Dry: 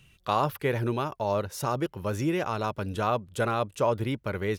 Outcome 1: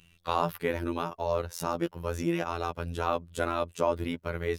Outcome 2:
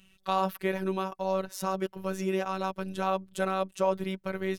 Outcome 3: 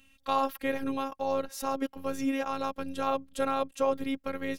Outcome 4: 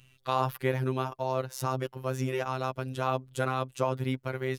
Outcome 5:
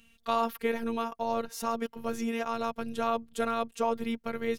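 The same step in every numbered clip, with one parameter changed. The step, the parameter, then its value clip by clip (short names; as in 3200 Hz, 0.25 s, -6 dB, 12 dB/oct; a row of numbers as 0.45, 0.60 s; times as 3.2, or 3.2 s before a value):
robotiser, frequency: 85, 190, 270, 130, 230 Hz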